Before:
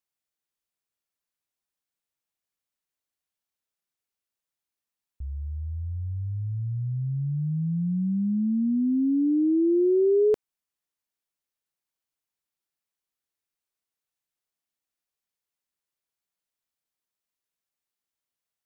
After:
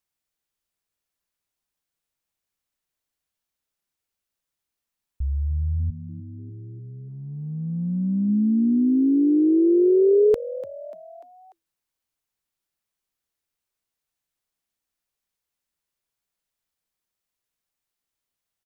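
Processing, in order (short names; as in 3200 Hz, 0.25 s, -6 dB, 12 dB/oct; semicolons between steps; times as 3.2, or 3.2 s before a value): 5.9–8.29 gate -26 dBFS, range -16 dB; low shelf 86 Hz +8.5 dB; frequency-shifting echo 0.294 s, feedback 50%, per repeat +82 Hz, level -16 dB; gain +3.5 dB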